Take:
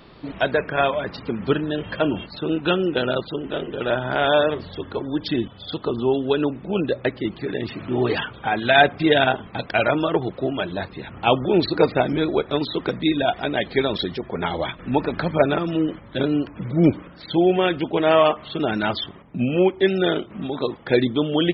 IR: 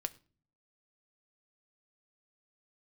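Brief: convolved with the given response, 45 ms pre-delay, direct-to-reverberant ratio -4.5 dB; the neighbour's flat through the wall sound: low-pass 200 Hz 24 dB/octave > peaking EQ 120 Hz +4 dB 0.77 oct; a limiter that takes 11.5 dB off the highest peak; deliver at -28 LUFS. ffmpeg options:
-filter_complex "[0:a]alimiter=limit=0.237:level=0:latency=1,asplit=2[s0][s1];[1:a]atrim=start_sample=2205,adelay=45[s2];[s1][s2]afir=irnorm=-1:irlink=0,volume=1.78[s3];[s0][s3]amix=inputs=2:normalize=0,lowpass=f=200:w=0.5412,lowpass=f=200:w=1.3066,equalizer=f=120:t=o:w=0.77:g=4,volume=0.944"

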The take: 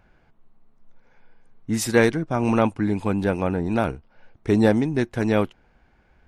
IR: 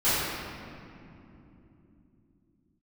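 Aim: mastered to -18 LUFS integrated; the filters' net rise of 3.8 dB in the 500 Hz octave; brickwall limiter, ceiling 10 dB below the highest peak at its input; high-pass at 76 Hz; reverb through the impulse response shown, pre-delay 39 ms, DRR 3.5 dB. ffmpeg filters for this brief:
-filter_complex "[0:a]highpass=76,equalizer=f=500:t=o:g=4.5,alimiter=limit=0.266:level=0:latency=1,asplit=2[s0][s1];[1:a]atrim=start_sample=2205,adelay=39[s2];[s1][s2]afir=irnorm=-1:irlink=0,volume=0.106[s3];[s0][s3]amix=inputs=2:normalize=0,volume=1.58"

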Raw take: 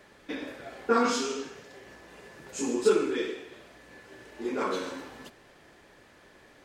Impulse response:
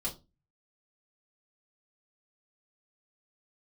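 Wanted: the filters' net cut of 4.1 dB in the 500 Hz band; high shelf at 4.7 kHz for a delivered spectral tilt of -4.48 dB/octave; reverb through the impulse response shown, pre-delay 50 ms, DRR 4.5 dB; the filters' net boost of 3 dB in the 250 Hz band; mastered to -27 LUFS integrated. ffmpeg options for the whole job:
-filter_complex "[0:a]equalizer=f=250:t=o:g=5.5,equalizer=f=500:t=o:g=-7,highshelf=f=4700:g=-5,asplit=2[s0][s1];[1:a]atrim=start_sample=2205,adelay=50[s2];[s1][s2]afir=irnorm=-1:irlink=0,volume=0.473[s3];[s0][s3]amix=inputs=2:normalize=0,volume=1.19"

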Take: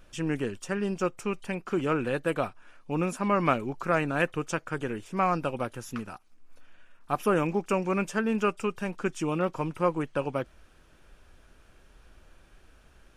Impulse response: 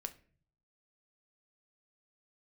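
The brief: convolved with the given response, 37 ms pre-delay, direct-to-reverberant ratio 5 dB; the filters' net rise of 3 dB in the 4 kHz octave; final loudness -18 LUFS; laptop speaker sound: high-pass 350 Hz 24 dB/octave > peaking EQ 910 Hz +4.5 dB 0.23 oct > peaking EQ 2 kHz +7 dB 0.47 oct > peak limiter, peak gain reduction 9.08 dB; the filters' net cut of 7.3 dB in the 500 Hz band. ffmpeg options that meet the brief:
-filter_complex "[0:a]equalizer=f=500:t=o:g=-8.5,equalizer=f=4000:t=o:g=3.5,asplit=2[s0][s1];[1:a]atrim=start_sample=2205,adelay=37[s2];[s1][s2]afir=irnorm=-1:irlink=0,volume=0.75[s3];[s0][s3]amix=inputs=2:normalize=0,highpass=f=350:w=0.5412,highpass=f=350:w=1.3066,equalizer=f=910:t=o:w=0.23:g=4.5,equalizer=f=2000:t=o:w=0.47:g=7,volume=5.31,alimiter=limit=0.668:level=0:latency=1"

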